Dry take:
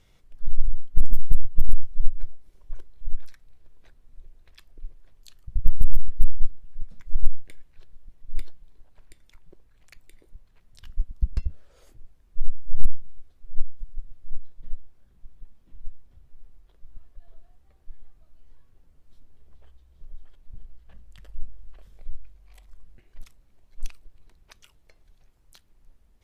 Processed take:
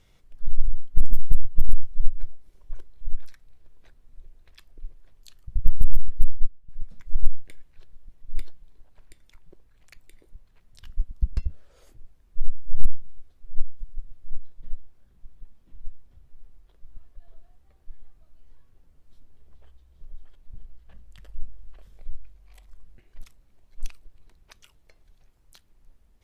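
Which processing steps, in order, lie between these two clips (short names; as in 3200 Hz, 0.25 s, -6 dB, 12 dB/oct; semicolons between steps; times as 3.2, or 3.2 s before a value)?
6.2–6.69 upward expander 1.5:1, over -26 dBFS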